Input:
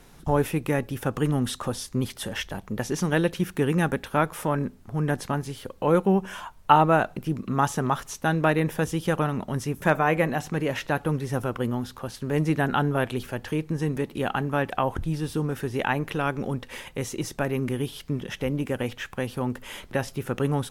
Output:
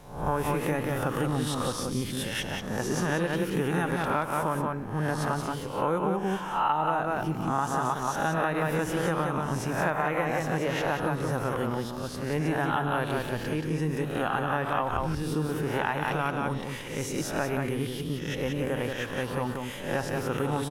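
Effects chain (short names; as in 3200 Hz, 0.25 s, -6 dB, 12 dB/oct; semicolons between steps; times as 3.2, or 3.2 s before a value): spectral swells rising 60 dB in 0.60 s; echo 0.179 s -4.5 dB; on a send at -18.5 dB: reverb RT60 3.5 s, pre-delay 6 ms; on the sum: dynamic EQ 1000 Hz, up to +5 dB, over -33 dBFS, Q 1.2; compressor 6:1, threshold -19 dBFS, peak gain reduction 12.5 dB; gain -4 dB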